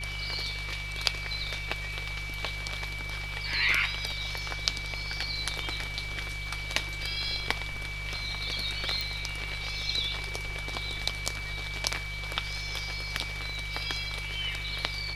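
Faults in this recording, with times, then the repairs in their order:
crackle 33 per s -42 dBFS
hum 50 Hz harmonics 3 -39 dBFS
whine 2.3 kHz -37 dBFS
9.01 s: pop -16 dBFS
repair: de-click; de-hum 50 Hz, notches 3; band-stop 2.3 kHz, Q 30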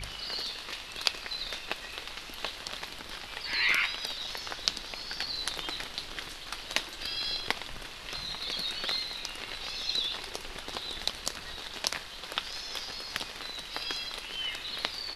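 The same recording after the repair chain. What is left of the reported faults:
nothing left

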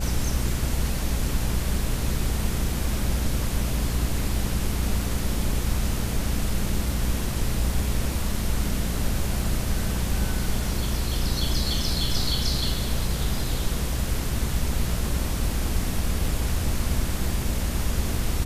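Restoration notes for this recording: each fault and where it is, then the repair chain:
buzz 60 Hz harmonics 11 -29 dBFS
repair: de-hum 60 Hz, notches 11

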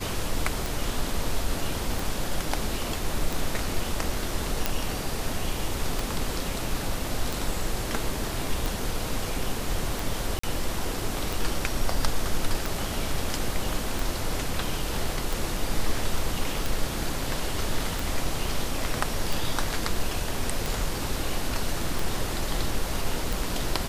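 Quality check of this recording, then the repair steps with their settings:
tick 45 rpm
4.66 s: pop
10.39–10.43 s: dropout 44 ms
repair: de-click; interpolate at 10.39 s, 44 ms

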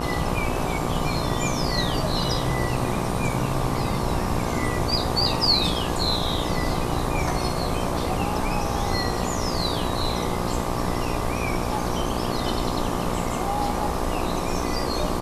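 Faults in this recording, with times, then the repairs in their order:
buzz 60 Hz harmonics 20 -29 dBFS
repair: de-hum 60 Hz, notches 20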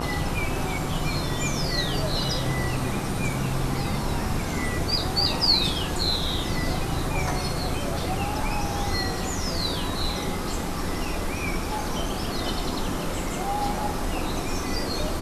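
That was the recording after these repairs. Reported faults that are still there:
nothing left

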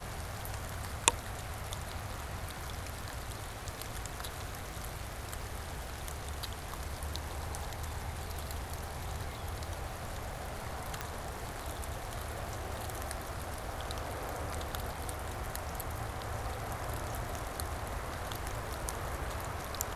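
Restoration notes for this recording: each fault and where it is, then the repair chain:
crackle 34 per s -44 dBFS
11.01 s: pop -19 dBFS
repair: de-click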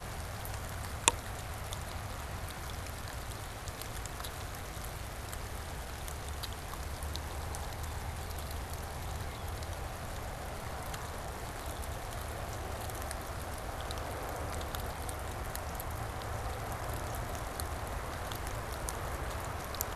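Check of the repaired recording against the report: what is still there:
11.01 s: pop

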